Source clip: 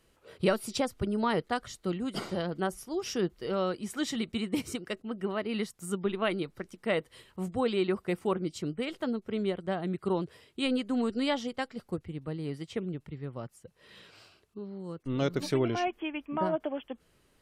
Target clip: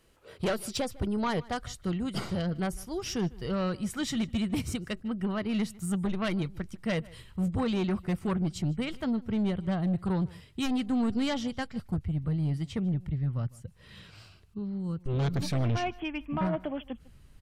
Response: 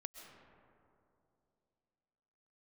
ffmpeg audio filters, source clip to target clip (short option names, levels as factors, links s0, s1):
-filter_complex "[0:a]asubboost=boost=7.5:cutoff=140,asplit=2[s0][s1];[s1]aeval=exprs='0.266*sin(PI/2*3.98*val(0)/0.266)':c=same,volume=0.398[s2];[s0][s2]amix=inputs=2:normalize=0,asplit=2[s3][s4];[s4]adelay=151.6,volume=0.0794,highshelf=f=4000:g=-3.41[s5];[s3][s5]amix=inputs=2:normalize=0,volume=0.355"